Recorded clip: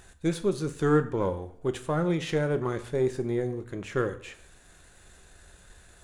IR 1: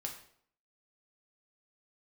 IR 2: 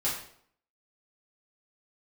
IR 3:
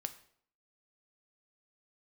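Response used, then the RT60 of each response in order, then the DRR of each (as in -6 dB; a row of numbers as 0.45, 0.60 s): 3; 0.60, 0.60, 0.60 s; 1.0, -8.5, 9.0 dB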